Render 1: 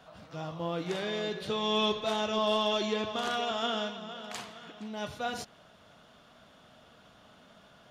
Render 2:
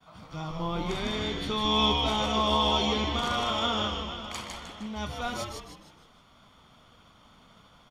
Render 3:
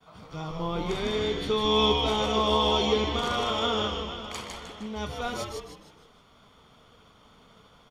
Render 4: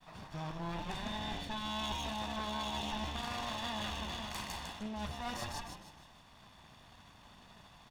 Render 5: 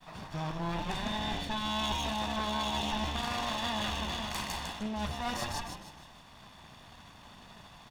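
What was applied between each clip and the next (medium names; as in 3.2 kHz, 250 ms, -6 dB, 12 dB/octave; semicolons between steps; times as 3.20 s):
expander -53 dBFS; comb 0.9 ms, depth 50%; frequency-shifting echo 154 ms, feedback 41%, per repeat -140 Hz, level -3.5 dB; trim +1.5 dB
peaking EQ 440 Hz +9.5 dB 0.3 oct
comb filter that takes the minimum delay 1.1 ms; reverse; compression 4:1, threshold -38 dBFS, peak gain reduction 14.5 dB; reverse
hum notches 50/100 Hz; trim +5.5 dB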